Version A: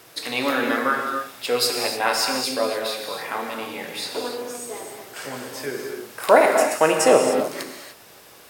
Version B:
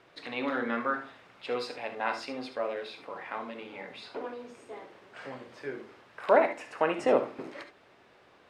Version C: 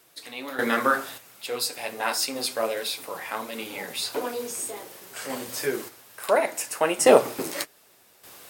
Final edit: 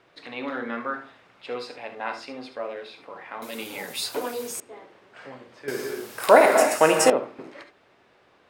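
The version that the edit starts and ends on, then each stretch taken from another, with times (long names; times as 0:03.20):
B
0:03.42–0:04.60: punch in from C
0:05.68–0:07.10: punch in from A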